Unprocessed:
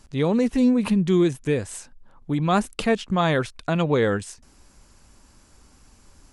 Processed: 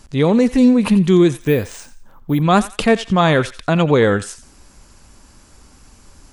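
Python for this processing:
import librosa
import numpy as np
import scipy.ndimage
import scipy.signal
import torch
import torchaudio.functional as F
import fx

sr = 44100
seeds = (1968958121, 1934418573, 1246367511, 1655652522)

y = fx.echo_thinned(x, sr, ms=87, feedback_pct=32, hz=1100.0, wet_db=-13.5)
y = fx.resample_bad(y, sr, factor=3, down='filtered', up='hold', at=(1.41, 2.42))
y = F.gain(torch.from_numpy(y), 7.0).numpy()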